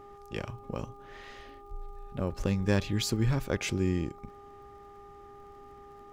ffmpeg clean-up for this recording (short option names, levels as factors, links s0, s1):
-af "adeclick=t=4,bandreject=f=404.3:t=h:w=4,bandreject=f=808.6:t=h:w=4,bandreject=f=1212.9:t=h:w=4"